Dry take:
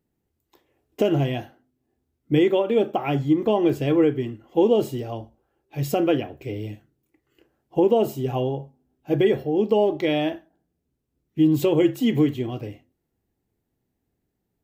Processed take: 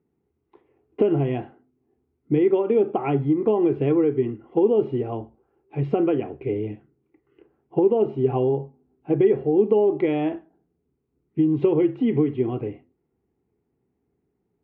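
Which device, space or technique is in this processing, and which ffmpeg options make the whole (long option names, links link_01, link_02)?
bass amplifier: -af "acompressor=threshold=-22dB:ratio=4,highpass=67,equalizer=frequency=100:width_type=q:width=4:gain=-5,equalizer=frequency=410:width_type=q:width=4:gain=7,equalizer=frequency=590:width_type=q:width=4:gain=-7,equalizer=frequency=1700:width_type=q:width=4:gain=-8,lowpass=frequency=2200:width=0.5412,lowpass=frequency=2200:width=1.3066,volume=3.5dB"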